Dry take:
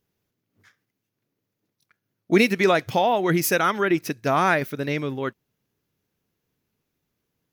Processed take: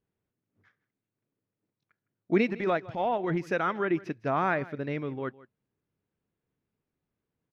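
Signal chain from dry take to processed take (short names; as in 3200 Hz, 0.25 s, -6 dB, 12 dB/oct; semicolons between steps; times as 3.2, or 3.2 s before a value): Bessel low-pass 1900 Hz, order 2; 2.5–3.47 transient shaper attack -10 dB, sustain -6 dB; echo 0.159 s -20 dB; gain -6 dB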